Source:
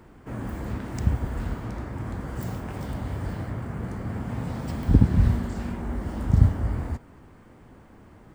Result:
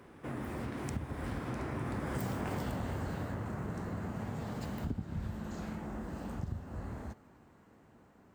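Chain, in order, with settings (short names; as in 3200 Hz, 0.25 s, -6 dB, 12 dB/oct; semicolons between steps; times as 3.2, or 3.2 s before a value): Doppler pass-by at 2.44, 34 m/s, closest 13 m; HPF 150 Hz 6 dB/oct; compressor 4:1, threshold -50 dBFS, peak gain reduction 17 dB; gain +14 dB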